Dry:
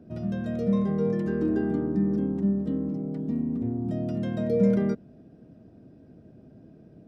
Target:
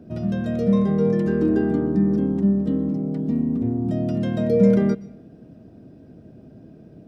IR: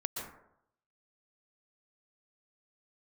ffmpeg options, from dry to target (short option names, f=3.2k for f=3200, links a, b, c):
-filter_complex "[0:a]asplit=2[a][b];[b]highshelf=f=1.9k:t=q:w=1.5:g=8[c];[1:a]atrim=start_sample=2205[d];[c][d]afir=irnorm=-1:irlink=0,volume=-20.5dB[e];[a][e]amix=inputs=2:normalize=0,volume=5dB"